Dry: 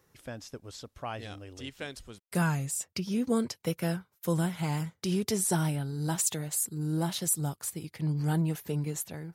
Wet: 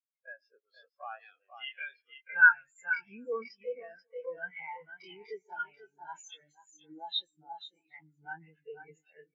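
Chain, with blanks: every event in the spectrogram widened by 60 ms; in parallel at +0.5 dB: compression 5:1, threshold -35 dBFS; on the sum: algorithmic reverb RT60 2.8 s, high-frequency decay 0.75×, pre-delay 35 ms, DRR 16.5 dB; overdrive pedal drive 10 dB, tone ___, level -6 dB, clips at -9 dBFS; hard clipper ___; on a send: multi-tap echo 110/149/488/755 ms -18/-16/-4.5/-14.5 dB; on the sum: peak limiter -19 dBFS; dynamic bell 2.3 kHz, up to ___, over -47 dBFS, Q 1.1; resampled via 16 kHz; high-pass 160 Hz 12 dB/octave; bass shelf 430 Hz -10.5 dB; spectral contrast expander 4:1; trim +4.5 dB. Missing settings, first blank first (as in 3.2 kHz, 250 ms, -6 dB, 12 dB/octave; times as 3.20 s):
3.5 kHz, -17.5 dBFS, +7 dB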